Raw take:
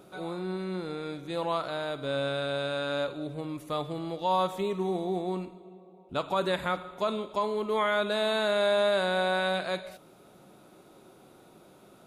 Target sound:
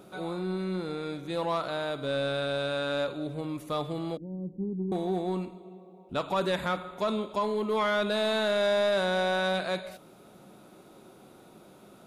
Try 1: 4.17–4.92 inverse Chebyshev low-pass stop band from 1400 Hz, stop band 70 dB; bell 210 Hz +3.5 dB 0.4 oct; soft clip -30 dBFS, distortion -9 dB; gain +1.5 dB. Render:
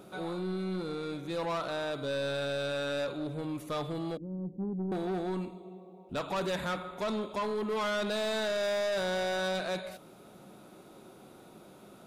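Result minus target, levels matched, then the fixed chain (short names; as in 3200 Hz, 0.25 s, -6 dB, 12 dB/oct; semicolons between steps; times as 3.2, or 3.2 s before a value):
soft clip: distortion +10 dB
4.17–4.92 inverse Chebyshev low-pass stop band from 1400 Hz, stop band 70 dB; bell 210 Hz +3.5 dB 0.4 oct; soft clip -21 dBFS, distortion -18 dB; gain +1.5 dB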